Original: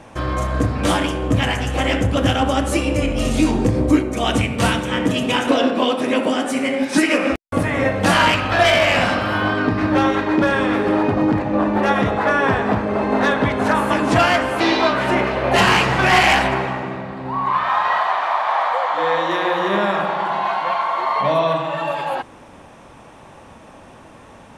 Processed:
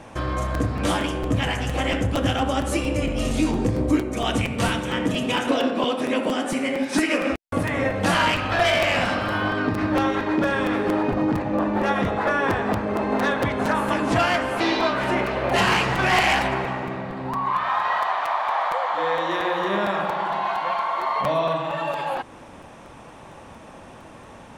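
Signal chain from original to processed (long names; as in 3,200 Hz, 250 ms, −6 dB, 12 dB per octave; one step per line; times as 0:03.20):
in parallel at +1 dB: downward compressor, threshold −27 dBFS, peak gain reduction 17 dB
on the sum: regular buffer underruns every 0.23 s, samples 256, repeat, from 0:00.54
level −7 dB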